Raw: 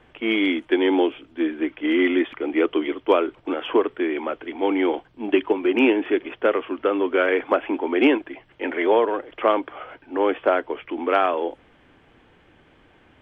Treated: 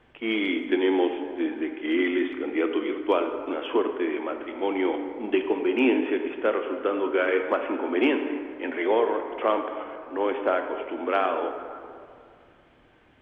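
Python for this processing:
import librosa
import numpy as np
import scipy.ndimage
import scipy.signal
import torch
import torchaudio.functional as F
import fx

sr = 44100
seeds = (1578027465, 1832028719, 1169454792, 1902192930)

y = fx.rev_plate(x, sr, seeds[0], rt60_s=2.3, hf_ratio=0.5, predelay_ms=0, drr_db=5.5)
y = y * 10.0 ** (-5.0 / 20.0)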